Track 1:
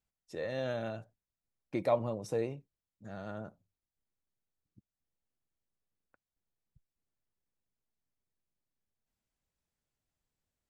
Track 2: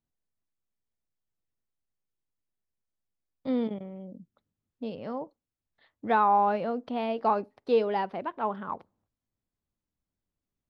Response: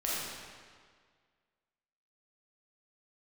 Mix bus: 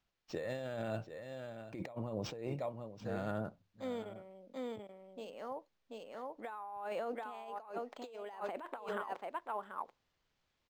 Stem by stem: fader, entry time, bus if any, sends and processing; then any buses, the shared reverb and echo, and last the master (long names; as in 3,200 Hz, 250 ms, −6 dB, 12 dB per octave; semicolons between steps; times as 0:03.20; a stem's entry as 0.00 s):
−2.0 dB, 0.00 s, no send, echo send −14.5 dB, no processing
0.0 dB, 0.35 s, no send, echo send −11.5 dB, Bessel high-pass filter 590 Hz, order 2; automatic ducking −10 dB, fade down 1.80 s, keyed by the first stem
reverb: not used
echo: single-tap delay 735 ms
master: high-shelf EQ 4,900 Hz +5 dB; compressor whose output falls as the input rises −42 dBFS, ratio −1; linearly interpolated sample-rate reduction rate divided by 4×